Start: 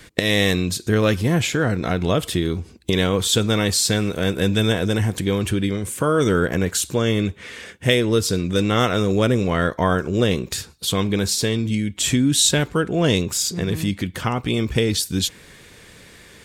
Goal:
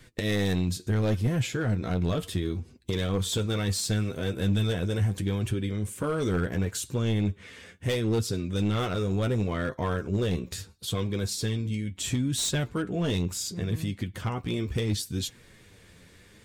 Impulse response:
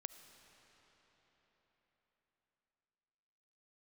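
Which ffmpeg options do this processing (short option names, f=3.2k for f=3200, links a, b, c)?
-af "flanger=delay=7.6:depth=4.2:regen=40:speed=0.72:shape=triangular,asoftclip=type=hard:threshold=-17dB,lowshelf=f=230:g=7.5,volume=-7dB"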